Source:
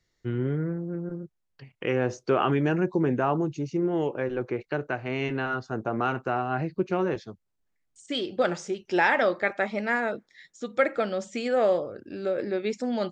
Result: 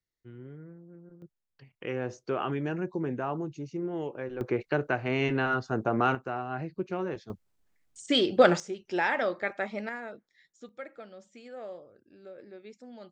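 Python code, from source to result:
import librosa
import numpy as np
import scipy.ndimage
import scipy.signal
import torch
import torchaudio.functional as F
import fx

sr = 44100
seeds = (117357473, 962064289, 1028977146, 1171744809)

y = fx.gain(x, sr, db=fx.steps((0.0, -18.0), (1.22, -7.5), (4.41, 1.5), (6.15, -6.5), (7.3, 5.5), (8.6, -5.5), (9.89, -12.5), (10.69, -19.0)))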